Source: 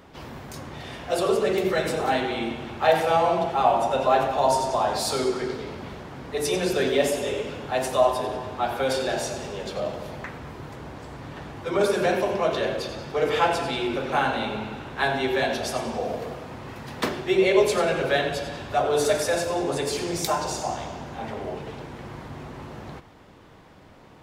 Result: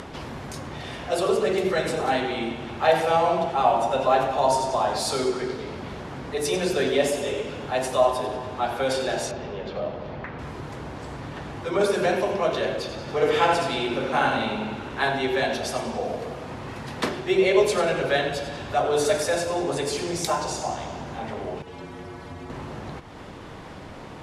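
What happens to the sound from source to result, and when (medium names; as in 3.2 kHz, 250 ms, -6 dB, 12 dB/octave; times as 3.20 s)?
9.31–10.39 s: distance through air 230 m
13.01–15.09 s: delay 70 ms -4 dB
21.62–22.50 s: inharmonic resonator 85 Hz, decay 0.21 s, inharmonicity 0.008
whole clip: upward compressor, threshold -29 dBFS; steep low-pass 12 kHz 36 dB/octave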